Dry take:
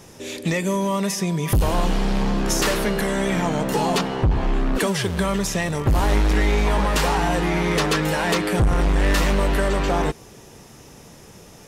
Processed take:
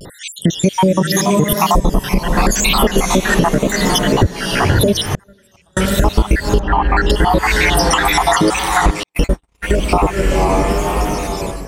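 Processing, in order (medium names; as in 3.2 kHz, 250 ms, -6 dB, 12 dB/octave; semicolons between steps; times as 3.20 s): random holes in the spectrogram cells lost 78%; on a send: echo that smears into a reverb 527 ms, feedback 44%, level -8.5 dB; on the sum: level rider gain up to 11 dB; 6.60–7.09 s: low-pass 1.8 kHz 12 dB/octave; vibrato 0.84 Hz 73 cents; 5.07–5.77 s: inverted gate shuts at -16 dBFS, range -41 dB; compression 12:1, threshold -21 dBFS, peak gain reduction 14.5 dB; 9.03–9.78 s: gate -23 dBFS, range -59 dB; loudness maximiser +13.5 dB; trim -1 dB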